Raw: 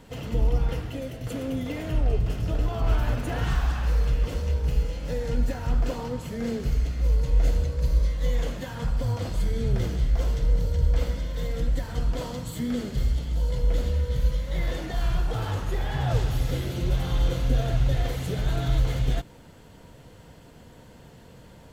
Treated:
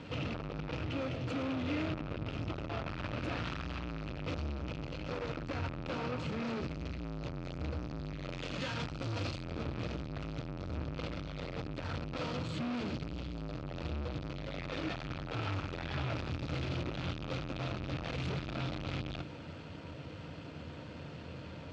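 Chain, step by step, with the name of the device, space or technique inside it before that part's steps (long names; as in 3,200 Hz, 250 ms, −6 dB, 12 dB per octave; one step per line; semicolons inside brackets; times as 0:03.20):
0:08.29–0:09.39: high-shelf EQ 3,400 Hz +11 dB
guitar amplifier (tube saturation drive 39 dB, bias 0.4; bass and treble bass +1 dB, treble +8 dB; loudspeaker in its box 82–4,600 Hz, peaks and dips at 84 Hz +10 dB, 150 Hz +5 dB, 300 Hz +8 dB, 580 Hz +5 dB, 1,300 Hz +8 dB, 2,500 Hz +9 dB)
level +1 dB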